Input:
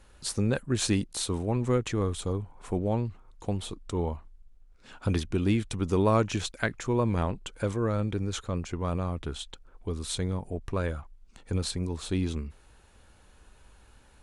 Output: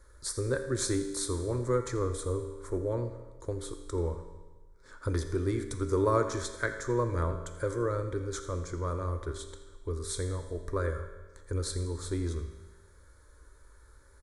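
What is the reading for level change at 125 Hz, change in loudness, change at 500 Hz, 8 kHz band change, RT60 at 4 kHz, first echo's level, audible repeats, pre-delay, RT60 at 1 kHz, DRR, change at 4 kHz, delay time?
−3.5 dB, −3.0 dB, 0.0 dB, −0.5 dB, 1.2 s, −16.0 dB, 1, 4 ms, 1.3 s, 6.5 dB, −6.5 dB, 84 ms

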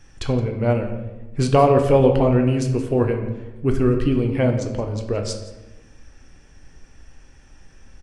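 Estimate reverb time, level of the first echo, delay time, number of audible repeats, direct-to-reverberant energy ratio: 1.1 s, −16.5 dB, 170 ms, 1, 3.5 dB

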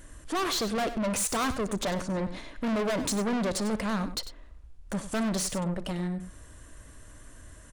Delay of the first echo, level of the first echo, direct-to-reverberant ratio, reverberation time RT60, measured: 59 ms, −20.0 dB, no reverb audible, no reverb audible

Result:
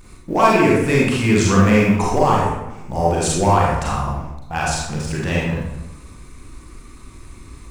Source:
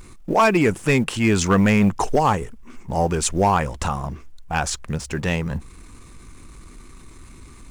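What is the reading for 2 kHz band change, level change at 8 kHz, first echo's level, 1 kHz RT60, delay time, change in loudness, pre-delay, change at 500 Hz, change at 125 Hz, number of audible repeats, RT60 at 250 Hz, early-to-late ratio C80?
+2.5 dB, +1.5 dB, no echo audible, 0.90 s, no echo audible, +3.0 dB, 34 ms, +3.5 dB, +4.0 dB, no echo audible, 1.0 s, 3.0 dB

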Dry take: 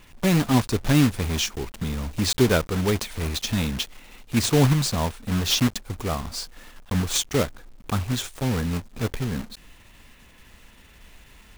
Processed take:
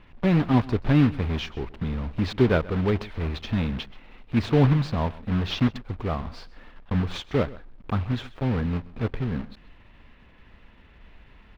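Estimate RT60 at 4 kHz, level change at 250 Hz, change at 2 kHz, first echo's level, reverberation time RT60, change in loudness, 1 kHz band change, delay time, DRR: no reverb audible, −0.5 dB, −3.5 dB, −20.0 dB, no reverb audible, −1.5 dB, −1.5 dB, 130 ms, no reverb audible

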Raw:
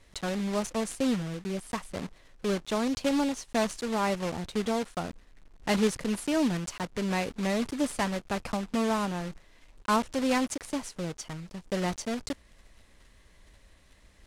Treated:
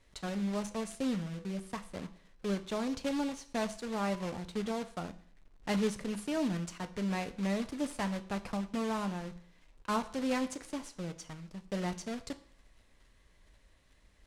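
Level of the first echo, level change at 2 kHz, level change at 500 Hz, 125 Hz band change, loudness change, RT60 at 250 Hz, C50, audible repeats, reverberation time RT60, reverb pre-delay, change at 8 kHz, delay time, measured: no echo audible, −7.0 dB, −6.5 dB, −3.5 dB, −5.5 dB, 0.55 s, 16.0 dB, no echo audible, 0.55 s, 6 ms, −8.0 dB, no echo audible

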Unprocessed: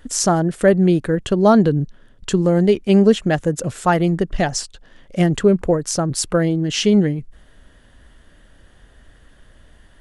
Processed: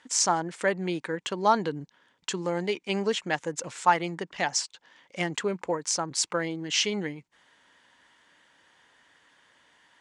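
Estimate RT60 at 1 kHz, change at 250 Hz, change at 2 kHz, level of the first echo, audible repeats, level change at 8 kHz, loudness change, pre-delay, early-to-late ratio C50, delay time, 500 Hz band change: no reverb audible, −17.0 dB, −3.5 dB, no echo audible, no echo audible, −4.0 dB, −11.0 dB, no reverb audible, no reverb audible, no echo audible, −13.0 dB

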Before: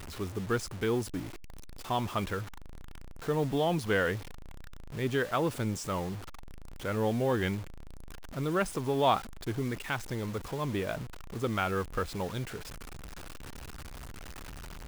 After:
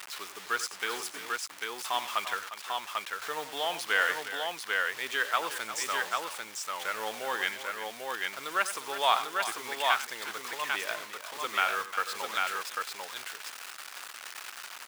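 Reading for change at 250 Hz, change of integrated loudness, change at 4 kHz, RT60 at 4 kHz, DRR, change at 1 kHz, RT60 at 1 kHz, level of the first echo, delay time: −16.5 dB, +0.5 dB, +8.5 dB, no reverb audible, no reverb audible, +4.0 dB, no reverb audible, −13.0 dB, 92 ms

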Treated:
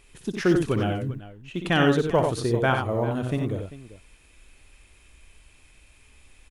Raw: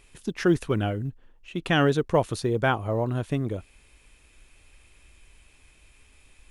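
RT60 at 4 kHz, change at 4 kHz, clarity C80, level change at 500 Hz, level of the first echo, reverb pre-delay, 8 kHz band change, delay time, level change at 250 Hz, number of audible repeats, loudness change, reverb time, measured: no reverb audible, +1.5 dB, no reverb audible, +1.5 dB, −8.0 dB, no reverb audible, +1.5 dB, 60 ms, +2.0 dB, 3, +1.5 dB, no reverb audible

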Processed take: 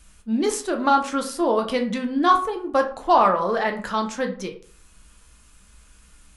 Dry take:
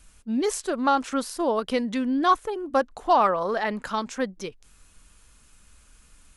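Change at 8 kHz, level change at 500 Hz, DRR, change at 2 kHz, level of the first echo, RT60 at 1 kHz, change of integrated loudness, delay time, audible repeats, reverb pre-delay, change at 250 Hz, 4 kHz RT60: +2.5 dB, +3.0 dB, 3.5 dB, +3.5 dB, no echo audible, 0.45 s, +3.0 dB, no echo audible, no echo audible, 7 ms, +2.0 dB, 0.30 s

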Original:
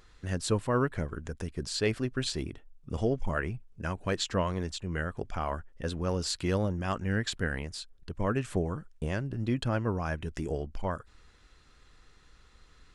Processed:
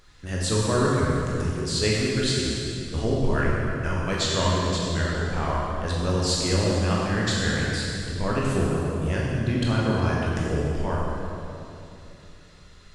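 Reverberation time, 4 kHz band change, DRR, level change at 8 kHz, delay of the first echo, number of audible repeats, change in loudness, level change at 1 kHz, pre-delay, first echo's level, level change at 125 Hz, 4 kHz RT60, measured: 2.9 s, +9.5 dB, −5.0 dB, +9.5 dB, no echo audible, no echo audible, +7.5 dB, +7.0 dB, 14 ms, no echo audible, +8.5 dB, 2.4 s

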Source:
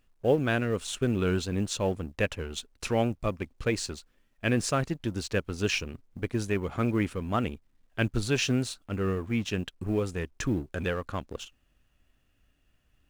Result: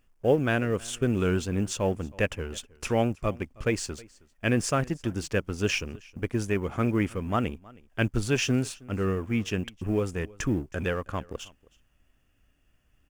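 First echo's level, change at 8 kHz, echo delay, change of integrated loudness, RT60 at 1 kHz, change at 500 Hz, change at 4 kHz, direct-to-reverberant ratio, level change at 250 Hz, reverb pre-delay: −23.5 dB, +1.0 dB, 318 ms, +1.5 dB, no reverb audible, +1.5 dB, −1.0 dB, no reverb audible, +1.5 dB, no reverb audible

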